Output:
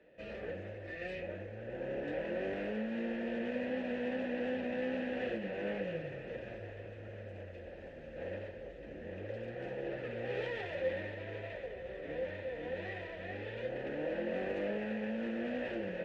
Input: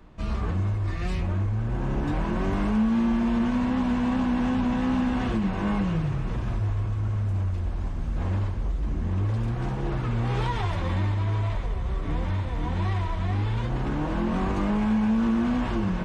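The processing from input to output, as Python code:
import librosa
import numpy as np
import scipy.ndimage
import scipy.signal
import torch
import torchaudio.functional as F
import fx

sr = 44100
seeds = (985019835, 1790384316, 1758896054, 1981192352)

y = fx.self_delay(x, sr, depth_ms=0.12)
y = fx.vowel_filter(y, sr, vowel='e')
y = y * librosa.db_to_amplitude(6.0)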